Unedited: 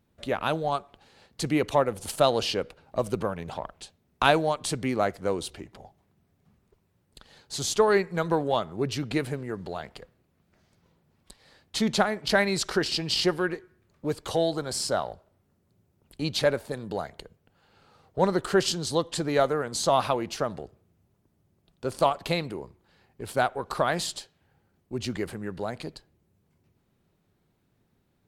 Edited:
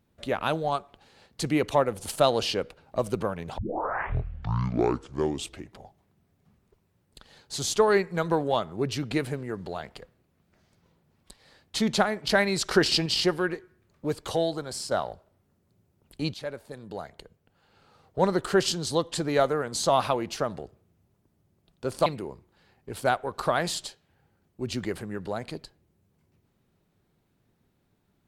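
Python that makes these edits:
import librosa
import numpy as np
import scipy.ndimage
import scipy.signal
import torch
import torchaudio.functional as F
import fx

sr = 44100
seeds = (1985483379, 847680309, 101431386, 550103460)

y = fx.edit(x, sr, fx.tape_start(start_s=3.58, length_s=2.15),
    fx.clip_gain(start_s=12.71, length_s=0.35, db=4.5),
    fx.fade_out_to(start_s=14.26, length_s=0.65, floor_db=-6.5),
    fx.fade_in_from(start_s=16.34, length_s=2.15, curve='qsin', floor_db=-15.0),
    fx.cut(start_s=22.06, length_s=0.32), tone=tone)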